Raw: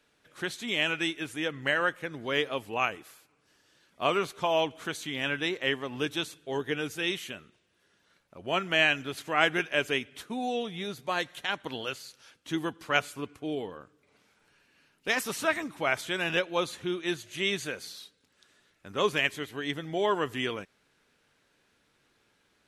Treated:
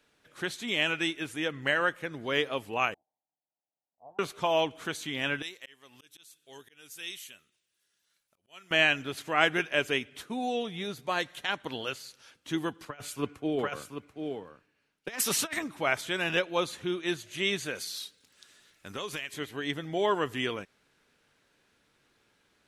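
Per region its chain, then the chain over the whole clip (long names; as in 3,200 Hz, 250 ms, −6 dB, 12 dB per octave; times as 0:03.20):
0:02.94–0:04.19: lower of the sound and its delayed copy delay 1.2 ms + elliptic low-pass filter 790 Hz, stop band 60 dB + first difference
0:05.42–0:08.71: first-order pre-emphasis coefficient 0.9 + volume swells 296 ms
0:12.85–0:15.59: single-tap delay 737 ms −5 dB + compressor whose output falls as the input rises −32 dBFS, ratio −0.5 + multiband upward and downward expander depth 70%
0:17.75–0:19.34: high-shelf EQ 2,300 Hz +9.5 dB + downward compressor, threshold −33 dBFS
whole clip: no processing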